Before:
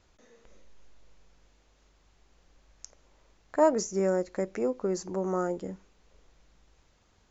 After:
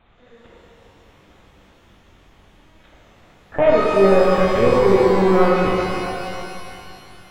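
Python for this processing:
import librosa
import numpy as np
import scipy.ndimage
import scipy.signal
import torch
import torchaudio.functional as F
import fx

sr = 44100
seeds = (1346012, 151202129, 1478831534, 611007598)

p1 = scipy.signal.sosfilt(scipy.signal.butter(2, 41.0, 'highpass', fs=sr, output='sos'), x)
p2 = fx.rider(p1, sr, range_db=10, speed_s=0.5)
p3 = p1 + (p2 * 10.0 ** (3.0 / 20.0))
p4 = fx.fold_sine(p3, sr, drive_db=5, ceiling_db=-4.0)
p5 = fx.lpc_vocoder(p4, sr, seeds[0], excitation='pitch_kept', order=10)
p6 = fx.rev_shimmer(p5, sr, seeds[1], rt60_s=2.5, semitones=12, shimmer_db=-8, drr_db=-5.0)
y = p6 * 10.0 ** (-6.5 / 20.0)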